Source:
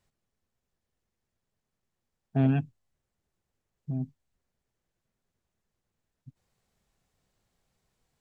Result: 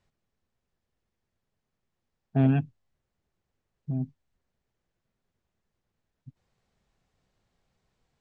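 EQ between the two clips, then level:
high-frequency loss of the air 77 metres
+2.0 dB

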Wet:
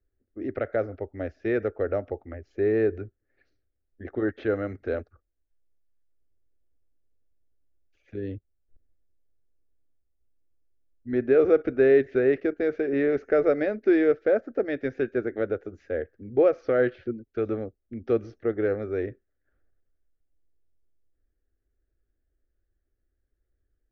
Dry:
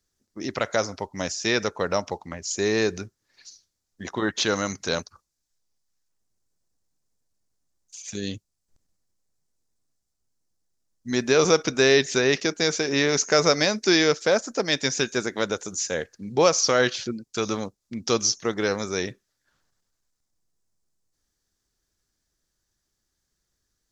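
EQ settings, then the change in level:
low-pass filter 1,700 Hz 24 dB per octave
low-shelf EQ 170 Hz +8.5 dB
phaser with its sweep stopped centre 410 Hz, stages 4
0.0 dB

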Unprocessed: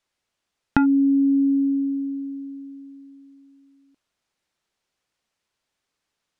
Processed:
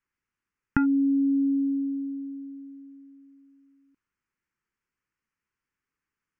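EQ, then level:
high-frequency loss of the air 88 metres
phaser with its sweep stopped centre 1,600 Hz, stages 4
−2.5 dB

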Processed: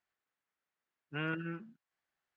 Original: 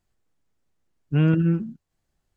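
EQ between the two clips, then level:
resonant band-pass 1,700 Hz, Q 1.1
−1.5 dB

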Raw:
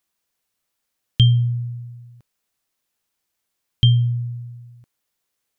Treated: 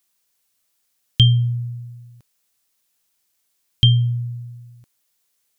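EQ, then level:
high-shelf EQ 3,100 Hz +9 dB
0.0 dB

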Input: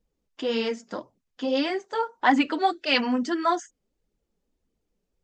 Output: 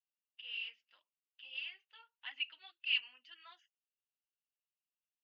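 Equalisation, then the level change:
four-pole ladder band-pass 2,900 Hz, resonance 85%
high-frequency loss of the air 270 metres
−5.0 dB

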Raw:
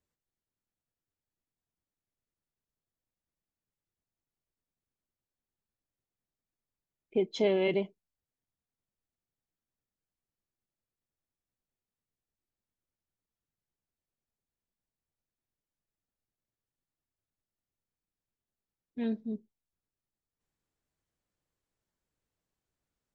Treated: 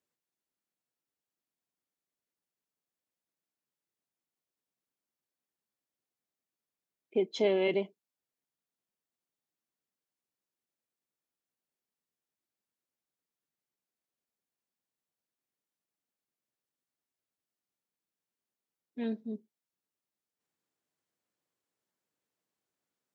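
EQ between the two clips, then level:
high-pass filter 210 Hz 12 dB per octave
0.0 dB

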